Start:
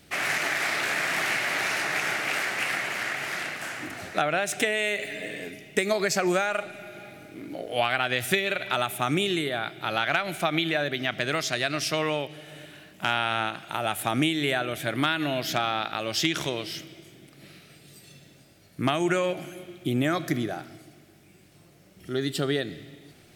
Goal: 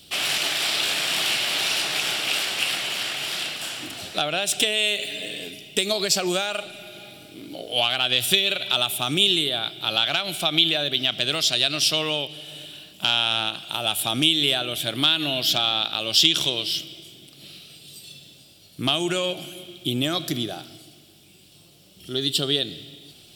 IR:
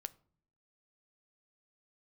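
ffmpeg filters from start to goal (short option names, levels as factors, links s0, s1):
-af "acontrast=85,highshelf=f=2500:t=q:w=3:g=8,bandreject=f=6400:w=9.9,volume=0.422"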